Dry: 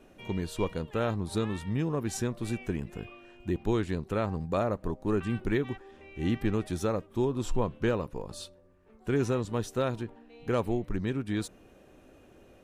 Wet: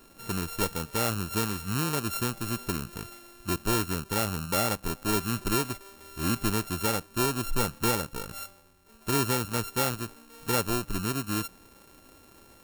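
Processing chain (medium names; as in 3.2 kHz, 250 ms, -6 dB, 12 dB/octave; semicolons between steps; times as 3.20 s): sorted samples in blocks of 32 samples; treble shelf 6.7 kHz +11 dB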